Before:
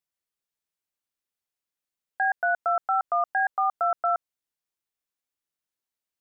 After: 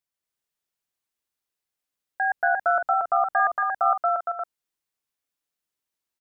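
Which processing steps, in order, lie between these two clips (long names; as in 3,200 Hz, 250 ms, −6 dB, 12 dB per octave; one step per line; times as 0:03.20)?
0:02.30–0:03.64: low-shelf EQ 320 Hz +9 dB
loudspeakers that aren't time-aligned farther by 80 metres −2 dB, 95 metres −5 dB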